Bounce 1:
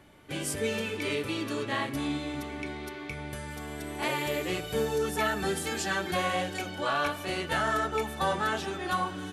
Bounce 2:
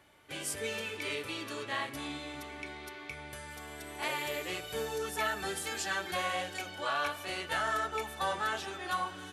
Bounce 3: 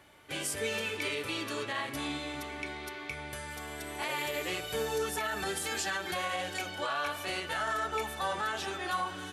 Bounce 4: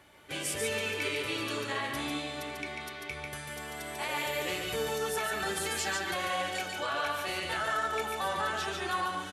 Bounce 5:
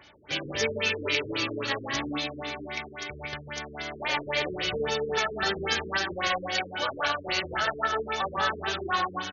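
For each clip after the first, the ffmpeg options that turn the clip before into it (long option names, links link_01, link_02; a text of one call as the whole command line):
ffmpeg -i in.wav -af "highpass=68,equalizer=frequency=190:width=0.54:gain=-10.5,volume=-2.5dB" out.wav
ffmpeg -i in.wav -af "alimiter=level_in=3.5dB:limit=-24dB:level=0:latency=1:release=67,volume=-3.5dB,volume=4dB" out.wav
ffmpeg -i in.wav -af "aecho=1:1:144:0.631" out.wav
ffmpeg -i in.wav -af "crystalizer=i=3.5:c=0,aeval=exprs='0.376*(cos(1*acos(clip(val(0)/0.376,-1,1)))-cos(1*PI/2))+0.0211*(cos(7*acos(clip(val(0)/0.376,-1,1)))-cos(7*PI/2))':channel_layout=same,afftfilt=real='re*lt(b*sr/1024,460*pow(6900/460,0.5+0.5*sin(2*PI*3.7*pts/sr)))':imag='im*lt(b*sr/1024,460*pow(6900/460,0.5+0.5*sin(2*PI*3.7*pts/sr)))':win_size=1024:overlap=0.75,volume=7dB" out.wav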